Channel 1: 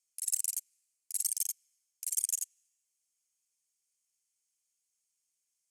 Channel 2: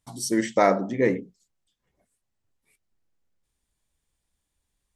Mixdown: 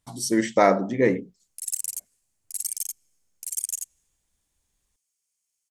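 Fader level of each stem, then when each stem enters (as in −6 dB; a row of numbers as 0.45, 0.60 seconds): +2.5, +1.5 decibels; 1.40, 0.00 seconds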